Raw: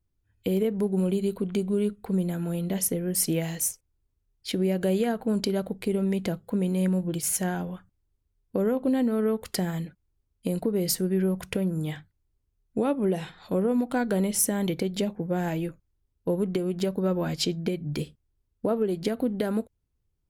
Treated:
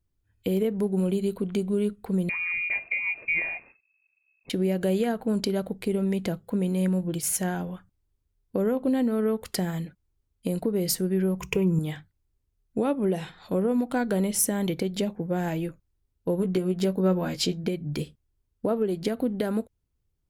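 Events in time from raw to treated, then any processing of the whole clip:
2.29–4.50 s: frequency inversion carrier 2.6 kHz
11.39–11.79 s: rippled EQ curve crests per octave 0.75, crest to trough 15 dB
16.37–17.64 s: doubling 16 ms -6 dB

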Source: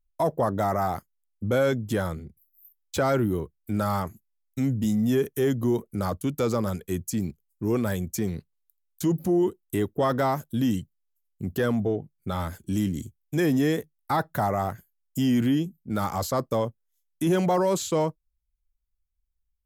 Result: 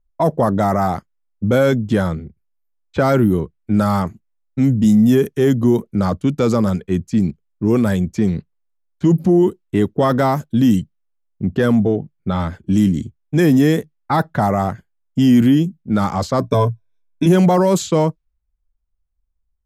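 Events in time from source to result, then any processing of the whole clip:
16.40–17.26 s: rippled EQ curve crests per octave 1.6, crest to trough 16 dB
whole clip: level-controlled noise filter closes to 1.2 kHz, open at -19.5 dBFS; dynamic bell 190 Hz, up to +6 dB, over -39 dBFS, Q 1.3; trim +7 dB

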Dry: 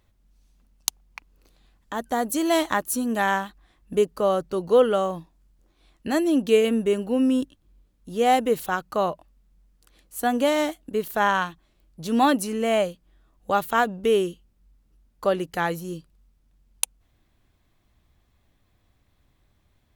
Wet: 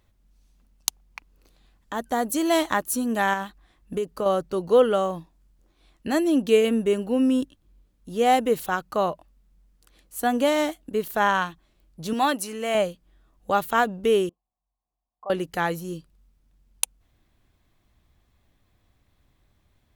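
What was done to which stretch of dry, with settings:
3.33–4.26 s: compression, threshold -22 dBFS
12.13–12.75 s: bass shelf 420 Hz -10.5 dB
14.29–15.30 s: cascade formant filter a

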